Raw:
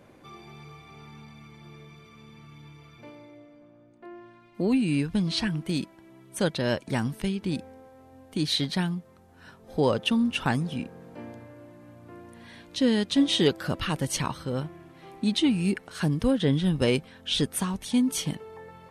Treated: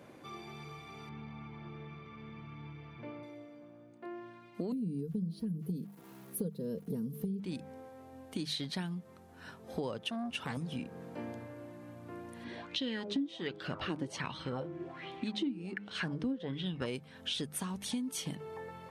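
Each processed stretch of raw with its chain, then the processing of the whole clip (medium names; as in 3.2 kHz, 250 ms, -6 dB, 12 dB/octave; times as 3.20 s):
1.09–3.23 s: Chebyshev low-pass 2.9 kHz + tilt EQ -1.5 dB/octave + repeats whose band climbs or falls 237 ms, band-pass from 1 kHz, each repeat 0.7 oct, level -2.5 dB
4.72–7.40 s: FFT filter 100 Hz 0 dB, 170 Hz +10 dB, 260 Hz -3 dB, 450 Hz +7 dB, 750 Hz -23 dB, 1.1 kHz -17 dB, 2.3 kHz -29 dB, 4.8 kHz -13 dB, 7.7 kHz -26 dB, 11 kHz +8 dB + small samples zeroed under -51 dBFS + comb 4.3 ms, depth 61%
10.01–10.57 s: high-pass 63 Hz 24 dB/octave + transformer saturation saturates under 1.1 kHz
12.44–16.86 s: distance through air 86 m + de-hum 103.2 Hz, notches 15 + sweeping bell 1.3 Hz 280–3500 Hz +14 dB
whole clip: high-pass 85 Hz; hum notches 50/100/150/200 Hz; compression 6:1, threshold -35 dBFS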